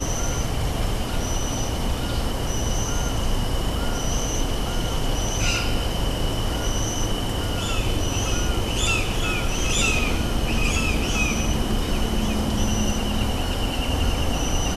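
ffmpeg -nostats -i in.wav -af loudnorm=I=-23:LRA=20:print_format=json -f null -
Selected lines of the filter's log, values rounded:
"input_i" : "-24.4",
"input_tp" : "-7.6",
"input_lra" : "3.1",
"input_thresh" : "-34.4",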